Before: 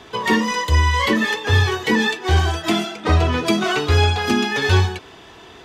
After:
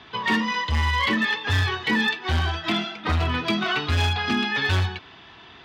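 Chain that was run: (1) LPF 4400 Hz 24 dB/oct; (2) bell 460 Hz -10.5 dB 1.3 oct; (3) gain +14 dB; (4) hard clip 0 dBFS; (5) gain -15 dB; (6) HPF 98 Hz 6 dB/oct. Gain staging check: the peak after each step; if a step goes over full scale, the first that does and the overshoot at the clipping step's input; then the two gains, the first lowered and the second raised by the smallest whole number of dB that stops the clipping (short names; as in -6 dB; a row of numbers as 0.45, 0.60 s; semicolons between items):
-4.5, -5.5, +8.5, 0.0, -15.0, -11.5 dBFS; step 3, 8.5 dB; step 3 +5 dB, step 5 -6 dB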